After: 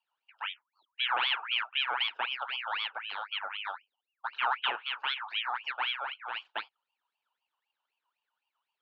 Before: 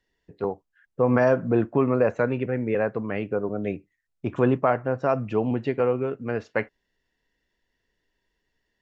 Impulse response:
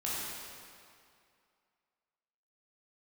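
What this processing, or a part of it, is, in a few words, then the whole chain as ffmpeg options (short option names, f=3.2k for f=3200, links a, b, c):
voice changer toy: -af "aeval=exprs='val(0)*sin(2*PI*1900*n/s+1900*0.5/3.9*sin(2*PI*3.9*n/s))':c=same,highpass=570,equalizer=f=580:t=q:w=4:g=-4,equalizer=f=900:t=q:w=4:g=8,equalizer=f=1.4k:t=q:w=4:g=4,equalizer=f=2k:t=q:w=4:g=-7,equalizer=f=2.9k:t=q:w=4:g=5,lowpass=f=4.1k:w=0.5412,lowpass=f=4.1k:w=1.3066,volume=-8.5dB"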